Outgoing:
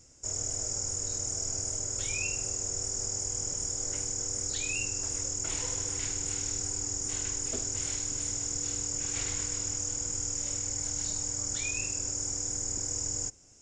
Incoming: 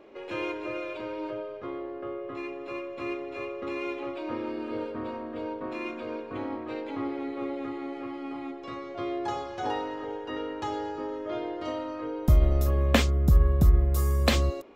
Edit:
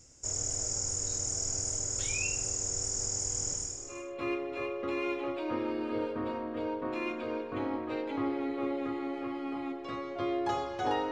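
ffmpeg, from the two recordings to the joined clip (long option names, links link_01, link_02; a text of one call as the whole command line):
ffmpeg -i cue0.wav -i cue1.wav -filter_complex "[0:a]apad=whole_dur=11.11,atrim=end=11.11,atrim=end=4.22,asetpts=PTS-STARTPTS[link_01];[1:a]atrim=start=2.31:end=9.9,asetpts=PTS-STARTPTS[link_02];[link_01][link_02]acrossfade=duration=0.7:curve1=qua:curve2=qua" out.wav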